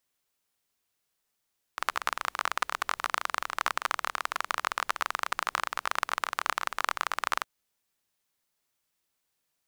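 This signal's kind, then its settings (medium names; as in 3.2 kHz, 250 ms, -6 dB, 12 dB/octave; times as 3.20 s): rain from filtered ticks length 5.66 s, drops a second 26, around 1.2 kHz, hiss -28.5 dB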